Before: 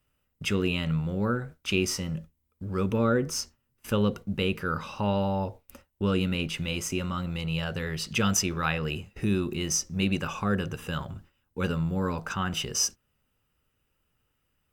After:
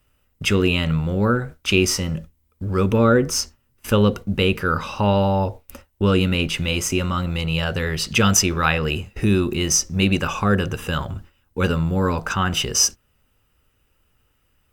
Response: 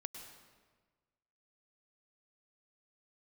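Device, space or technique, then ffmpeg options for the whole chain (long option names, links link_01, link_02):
low shelf boost with a cut just above: -af "lowshelf=frequency=110:gain=4.5,equalizer=frequency=160:width_type=o:width=0.9:gain=-4.5,volume=9dB"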